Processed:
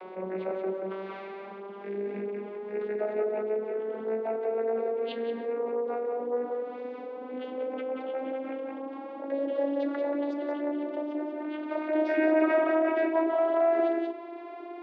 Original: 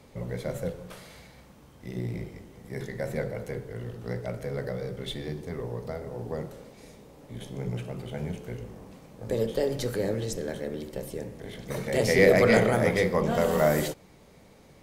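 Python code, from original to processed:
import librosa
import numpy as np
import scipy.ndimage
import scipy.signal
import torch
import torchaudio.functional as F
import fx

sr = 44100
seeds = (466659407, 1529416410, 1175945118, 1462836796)

y = fx.vocoder_glide(x, sr, note=54, semitones=11)
y = fx.cabinet(y, sr, low_hz=380.0, low_slope=24, high_hz=2700.0, hz=(570.0, 1800.0, 2600.0), db=(-6, -6, -6))
y = y + 10.0 ** (-5.5 / 20.0) * np.pad(y, (int(182 * sr / 1000.0), 0))[:len(y)]
y = fx.env_flatten(y, sr, amount_pct=50)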